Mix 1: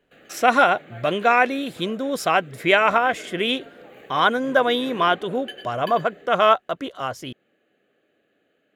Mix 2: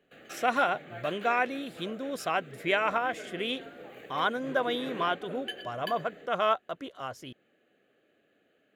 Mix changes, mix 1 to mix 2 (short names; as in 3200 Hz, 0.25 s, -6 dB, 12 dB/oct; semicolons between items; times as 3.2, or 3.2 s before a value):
speech -10.0 dB; background: send -11.5 dB